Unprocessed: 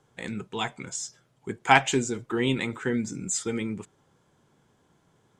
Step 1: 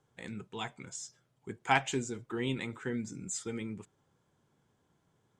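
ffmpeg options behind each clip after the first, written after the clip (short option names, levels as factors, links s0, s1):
-af "equalizer=f=93:w=0.98:g=3,volume=0.355"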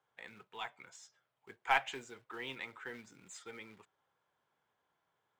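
-filter_complex "[0:a]acrusher=bits=5:mode=log:mix=0:aa=0.000001,acrossover=split=560 3800:gain=0.112 1 0.178[s0][s1][s2];[s0][s1][s2]amix=inputs=3:normalize=0,aeval=exprs='0.237*(cos(1*acos(clip(val(0)/0.237,-1,1)))-cos(1*PI/2))+0.00841*(cos(6*acos(clip(val(0)/0.237,-1,1)))-cos(6*PI/2))':c=same,volume=0.841"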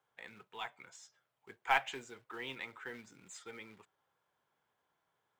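-af "acrusher=bits=9:mode=log:mix=0:aa=0.000001"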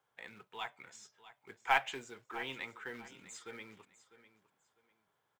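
-af "aecho=1:1:650|1300:0.158|0.0396,volume=1.12"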